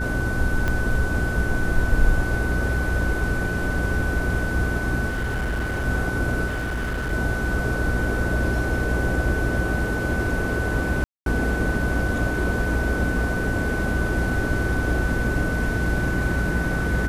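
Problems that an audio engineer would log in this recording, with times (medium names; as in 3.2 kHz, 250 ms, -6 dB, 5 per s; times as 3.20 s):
hum 60 Hz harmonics 7 -27 dBFS
whine 1.5 kHz -28 dBFS
0.68 s: pop -12 dBFS
5.08–5.86 s: clipped -21.5 dBFS
6.46–7.13 s: clipped -23 dBFS
11.04–11.26 s: dropout 222 ms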